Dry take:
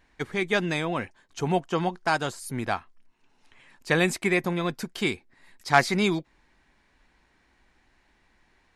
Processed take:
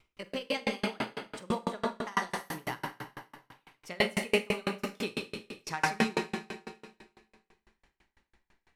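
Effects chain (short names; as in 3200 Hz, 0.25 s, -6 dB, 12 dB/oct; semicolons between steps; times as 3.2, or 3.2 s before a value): gliding pitch shift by +5 st ending unshifted; Schroeder reverb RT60 2.1 s, combs from 32 ms, DRR -1 dB; dB-ramp tremolo decaying 6 Hz, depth 34 dB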